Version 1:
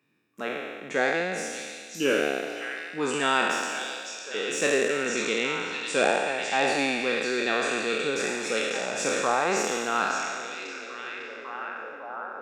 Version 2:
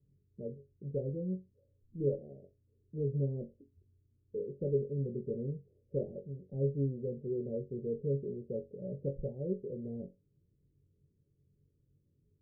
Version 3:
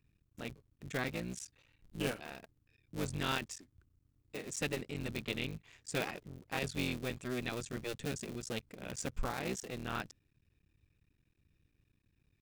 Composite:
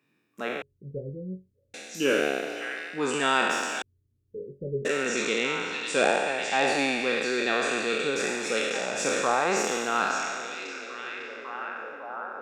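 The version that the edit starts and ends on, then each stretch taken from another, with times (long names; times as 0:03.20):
1
0:00.62–0:01.74: punch in from 2
0:03.82–0:04.85: punch in from 2
not used: 3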